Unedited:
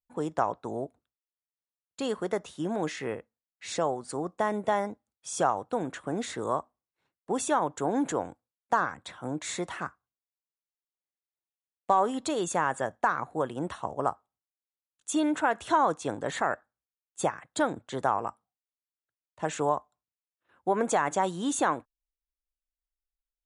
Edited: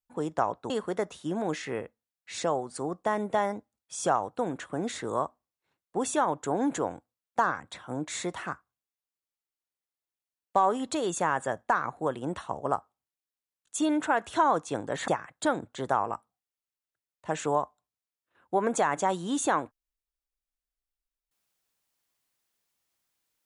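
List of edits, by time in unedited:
0.7–2.04 cut
16.42–17.22 cut

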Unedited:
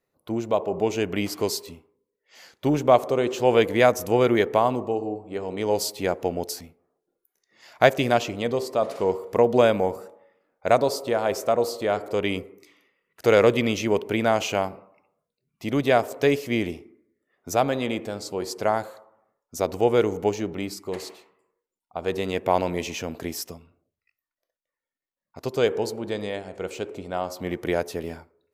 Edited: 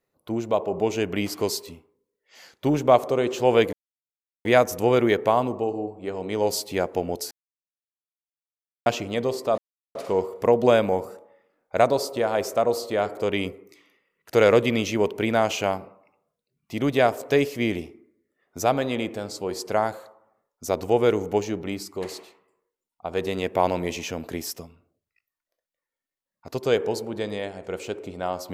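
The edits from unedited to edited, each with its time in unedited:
3.73 insert silence 0.72 s
6.59–8.14 mute
8.86 insert silence 0.37 s

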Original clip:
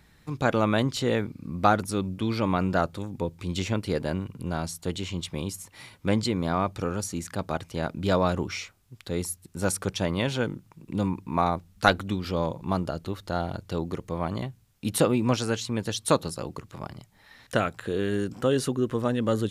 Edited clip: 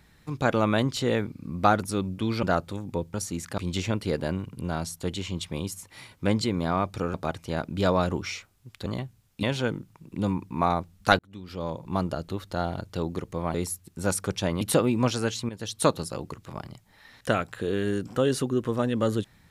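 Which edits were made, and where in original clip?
2.43–2.69 cut
6.96–7.4 move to 3.4
9.12–10.19 swap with 14.3–14.87
11.95–12.78 fade in
15.75–16.08 fade in, from -13 dB

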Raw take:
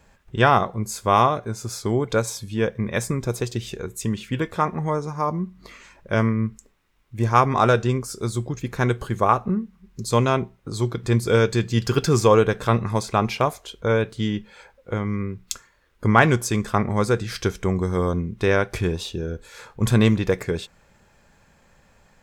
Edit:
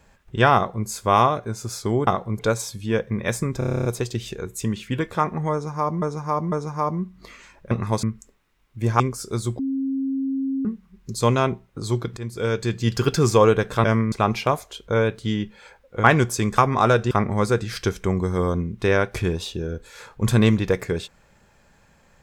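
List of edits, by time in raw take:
0.55–0.87 copy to 2.07
3.26 stutter 0.03 s, 10 plays
4.93–5.43 loop, 3 plays
6.12–6.4 swap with 12.74–13.06
7.37–7.9 move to 16.7
8.49–9.55 bleep 269 Hz -21.5 dBFS
11.07–11.82 fade in, from -15.5 dB
14.98–16.16 cut

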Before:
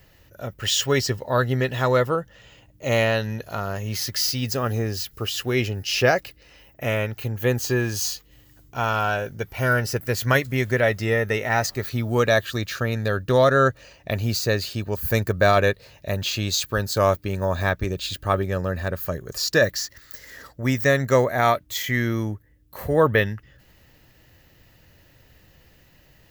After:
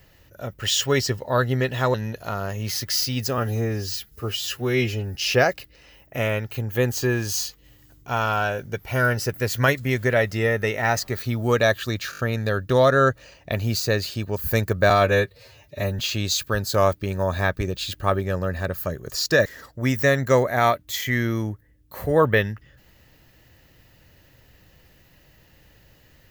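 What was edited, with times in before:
1.94–3.2 cut
4.64–5.82 stretch 1.5×
12.78 stutter 0.02 s, 5 plays
15.49–16.22 stretch 1.5×
19.68–20.27 cut

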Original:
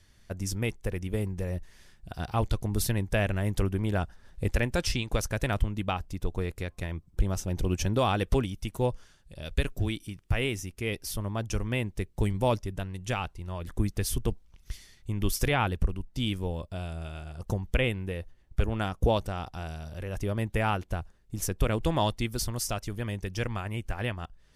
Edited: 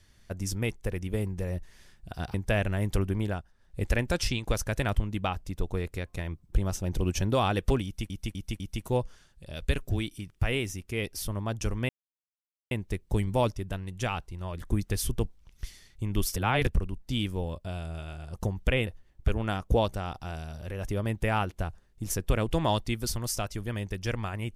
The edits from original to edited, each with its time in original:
2.34–2.98 cut
3.84–4.54 dip -11 dB, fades 0.25 s
8.49–8.74 loop, 4 plays
11.78 insert silence 0.82 s
15.43–15.74 reverse
17.94–18.19 cut

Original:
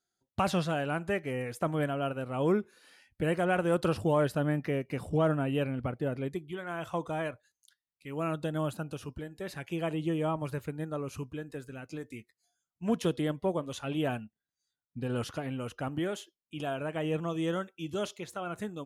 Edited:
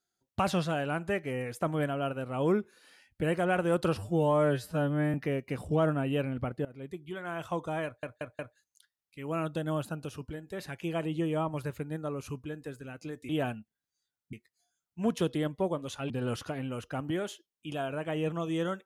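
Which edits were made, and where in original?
3.98–4.56 stretch 2×
6.07–6.6 fade in linear, from -21 dB
7.27 stutter 0.18 s, 4 plays
13.94–14.98 move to 12.17

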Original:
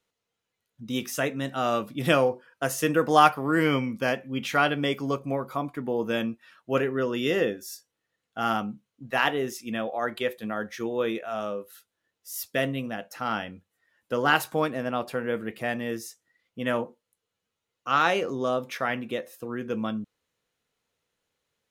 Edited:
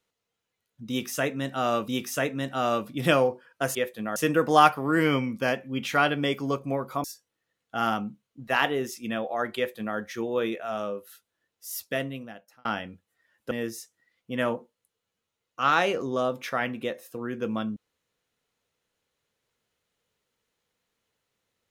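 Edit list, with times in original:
0.89–1.88 loop, 2 plays
5.64–7.67 cut
10.19–10.6 copy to 2.76
12.32–13.28 fade out
14.14–15.79 cut

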